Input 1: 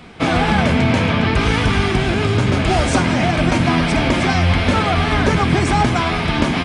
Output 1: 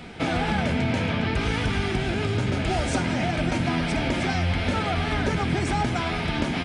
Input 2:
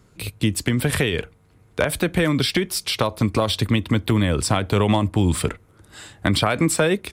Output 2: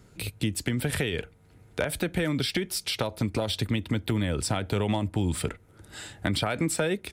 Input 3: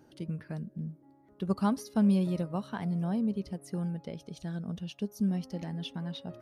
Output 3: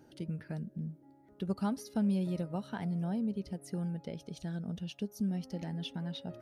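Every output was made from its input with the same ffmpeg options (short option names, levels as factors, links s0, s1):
-af "bandreject=f=1100:w=6,acompressor=threshold=0.0141:ratio=1.5"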